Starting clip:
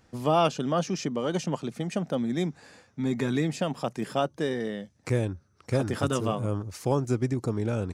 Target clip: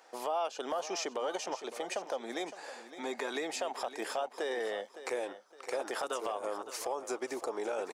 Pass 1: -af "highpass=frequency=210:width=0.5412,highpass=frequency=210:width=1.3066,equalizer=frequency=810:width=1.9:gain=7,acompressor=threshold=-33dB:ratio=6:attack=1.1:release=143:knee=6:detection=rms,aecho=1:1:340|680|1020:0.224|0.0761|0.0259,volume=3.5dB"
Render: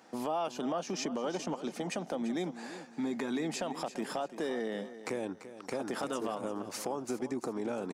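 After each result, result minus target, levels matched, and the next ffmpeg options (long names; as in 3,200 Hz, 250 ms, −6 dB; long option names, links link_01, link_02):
250 Hz band +8.5 dB; echo 222 ms early
-af "highpass=frequency=430:width=0.5412,highpass=frequency=430:width=1.3066,equalizer=frequency=810:width=1.9:gain=7,acompressor=threshold=-33dB:ratio=6:attack=1.1:release=143:knee=6:detection=rms,aecho=1:1:340|680|1020:0.224|0.0761|0.0259,volume=3.5dB"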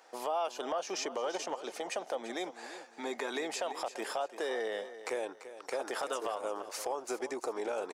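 echo 222 ms early
-af "highpass=frequency=430:width=0.5412,highpass=frequency=430:width=1.3066,equalizer=frequency=810:width=1.9:gain=7,acompressor=threshold=-33dB:ratio=6:attack=1.1:release=143:knee=6:detection=rms,aecho=1:1:562|1124|1686:0.224|0.0761|0.0259,volume=3.5dB"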